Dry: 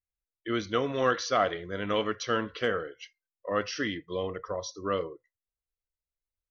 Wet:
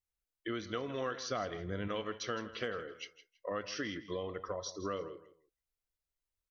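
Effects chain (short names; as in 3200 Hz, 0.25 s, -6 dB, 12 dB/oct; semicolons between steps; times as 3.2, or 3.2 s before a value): 1.29–1.88 low shelf 250 Hz +10.5 dB; compressor 4:1, threshold -36 dBFS, peak gain reduction 14.5 dB; feedback echo 0.163 s, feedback 23%, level -15 dB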